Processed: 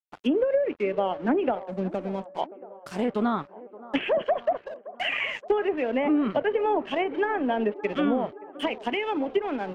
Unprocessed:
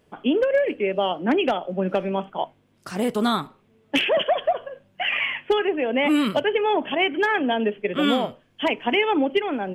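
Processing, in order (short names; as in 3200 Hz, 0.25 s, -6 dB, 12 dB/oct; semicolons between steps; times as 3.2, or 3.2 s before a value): 1.55–2.37 EQ curve 200 Hz 0 dB, 4300 Hz -13 dB, 7400 Hz +11 dB; crossover distortion -39.5 dBFS; 8.65–9.28 compressor 3:1, threshold -23 dBFS, peak gain reduction 6 dB; treble ducked by the level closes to 470 Hz, closed at -14.5 dBFS; band-limited delay 0.572 s, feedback 63%, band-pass 620 Hz, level -16 dB; gain -2 dB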